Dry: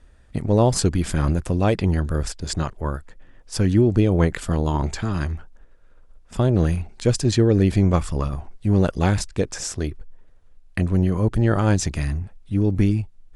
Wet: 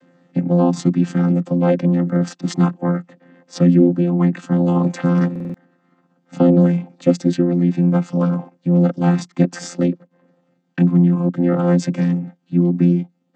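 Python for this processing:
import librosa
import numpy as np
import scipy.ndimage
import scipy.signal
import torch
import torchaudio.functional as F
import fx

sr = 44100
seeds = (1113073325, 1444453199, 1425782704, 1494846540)

y = fx.chord_vocoder(x, sr, chord='bare fifth', root=53)
y = fx.rider(y, sr, range_db=5, speed_s=0.5)
y = fx.buffer_glitch(y, sr, at_s=(5.31,), block=2048, repeats=4)
y = y * 10.0 ** (6.0 / 20.0)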